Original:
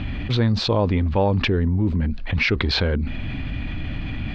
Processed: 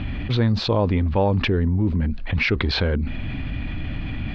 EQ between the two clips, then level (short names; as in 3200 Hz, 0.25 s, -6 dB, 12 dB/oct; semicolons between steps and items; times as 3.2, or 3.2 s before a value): air absorption 76 m; 0.0 dB